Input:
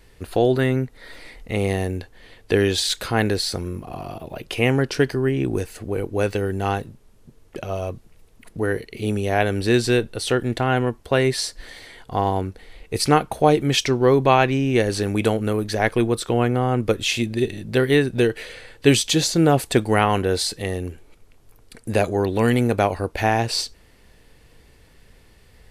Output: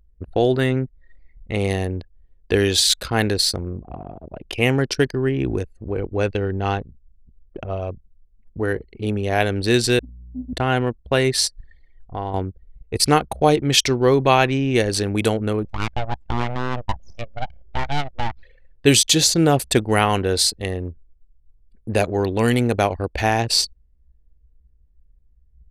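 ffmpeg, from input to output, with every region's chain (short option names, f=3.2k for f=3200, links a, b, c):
-filter_complex "[0:a]asettb=1/sr,asplit=3[a][b][c];[a]atrim=end=5.994[d];[b]atrim=start=5.99:end=7.8,asetpts=PTS-STARTPTS,afade=t=in:d=0.004:c=qsin,afade=t=out:st=1.806:d=0.004:c=qsin,lowpass=5.4k,lowshelf=f=64:g=3.5[e];[c]atrim=start=7.796[f];[d][e]acrossfade=d=0.004:c1=hsin:c2=qsin[g];[g][f]acrossfade=d=0.004:c1=qsin:c2=hsin,asettb=1/sr,asplit=3[h][i][j];[h]atrim=end=9.994[k];[i]atrim=start=9.99:end=10.53,asetpts=PTS-STARTPTS,afade=t=in:d=0.004:c=qsin,afade=t=out:st=0.536:d=0.004:c=qsin,asuperpass=centerf=260:order=20:qfactor=5.5,aeval=exprs='val(0)+0.00562*(sin(2*PI*60*n/s)+sin(2*PI*2*60*n/s)/2+sin(2*PI*3*60*n/s)/3+sin(2*PI*4*60*n/s)/4+sin(2*PI*5*60*n/s)/5)':c=same[l];[j]atrim=start=10.526[m];[k][l]acrossfade=d=0.004:c1=hsin:c2=qsin[n];[n][m]acrossfade=d=0.004:c1=qsin:c2=hsin,asettb=1/sr,asplit=3[o][p][q];[o]atrim=end=11.604[r];[p]atrim=start=11.6:end=12.34,asetpts=PTS-STARTPTS,afade=t=in:d=0.004:c=qsin,afade=t=out:st=0.736:d=0.004:c=qsin,asubboost=boost=8.5:cutoff=74,acompressor=threshold=-33dB:ratio=1.5:attack=3.2:release=140:knee=1:detection=peak[s];[q]atrim=start=12.336[t];[r][s]acrossfade=d=0.004:c1=hsin:c2=qsin[u];[u][t]acrossfade=d=0.004:c1=qsin:c2=hsin,asettb=1/sr,asplit=3[v][w][x];[v]atrim=end=15.654[y];[w]atrim=start=15.65:end=18.43,asetpts=PTS-STARTPTS,afade=t=in:d=0.004:c=qsin,afade=t=out:st=2.776:d=0.004:c=qsin,deesser=0.8,highpass=280,lowpass=4.1k,aeval=exprs='abs(val(0))':c=same[z];[x]atrim=start=18.426[aa];[y][z]acrossfade=d=0.004:c1=hsin:c2=qsin[ab];[ab][aa]acrossfade=d=0.004:c1=qsin:c2=hsin,equalizer=f=63:t=o:w=0.34:g=13,anlmdn=100,adynamicequalizer=threshold=0.0141:dfrequency=2900:dqfactor=0.7:tfrequency=2900:tqfactor=0.7:attack=5:release=100:ratio=0.375:range=3.5:mode=boostabove:tftype=highshelf"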